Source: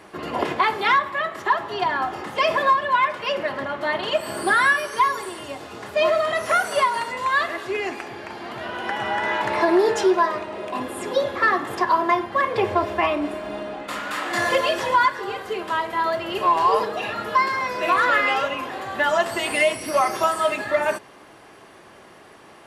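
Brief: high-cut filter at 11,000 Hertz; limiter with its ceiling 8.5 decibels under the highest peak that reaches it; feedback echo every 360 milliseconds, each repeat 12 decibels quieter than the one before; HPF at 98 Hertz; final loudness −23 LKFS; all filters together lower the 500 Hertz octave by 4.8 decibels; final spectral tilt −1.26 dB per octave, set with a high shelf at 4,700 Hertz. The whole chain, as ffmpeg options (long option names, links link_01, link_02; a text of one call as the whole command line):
ffmpeg -i in.wav -af "highpass=98,lowpass=11000,equalizer=frequency=500:width_type=o:gain=-6.5,highshelf=frequency=4700:gain=-7.5,alimiter=limit=-18.5dB:level=0:latency=1,aecho=1:1:360|720|1080:0.251|0.0628|0.0157,volume=4.5dB" out.wav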